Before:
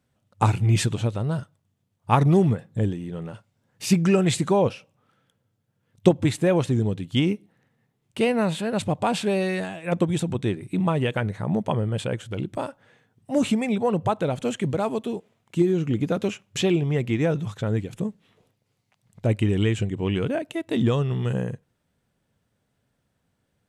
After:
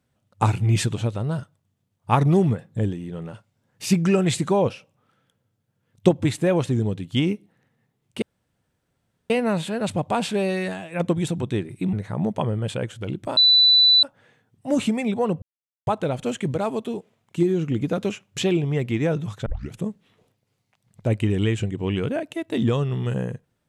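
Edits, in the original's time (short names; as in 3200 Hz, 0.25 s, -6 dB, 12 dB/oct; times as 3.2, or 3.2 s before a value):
8.22 insert room tone 1.08 s
10.85–11.23 cut
12.67 add tone 3980 Hz -11.5 dBFS 0.66 s
14.06 insert silence 0.45 s
17.65 tape start 0.26 s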